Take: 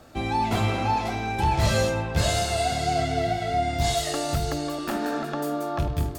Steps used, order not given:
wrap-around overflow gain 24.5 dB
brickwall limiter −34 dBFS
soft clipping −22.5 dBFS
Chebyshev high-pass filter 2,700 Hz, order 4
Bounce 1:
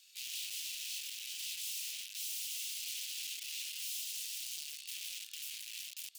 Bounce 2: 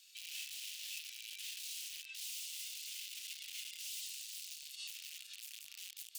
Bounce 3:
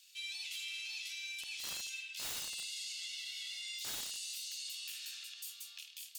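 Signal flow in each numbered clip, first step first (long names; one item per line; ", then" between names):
wrap-around overflow, then brickwall limiter, then Chebyshev high-pass filter, then soft clipping
soft clipping, then wrap-around overflow, then Chebyshev high-pass filter, then brickwall limiter
Chebyshev high-pass filter, then wrap-around overflow, then brickwall limiter, then soft clipping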